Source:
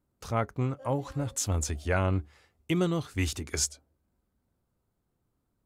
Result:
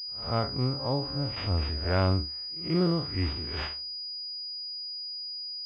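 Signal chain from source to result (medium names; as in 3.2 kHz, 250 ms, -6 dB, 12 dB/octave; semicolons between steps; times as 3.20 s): spectral blur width 104 ms; pre-echo 135 ms -20.5 dB; class-D stage that switches slowly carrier 4.9 kHz; trim +3 dB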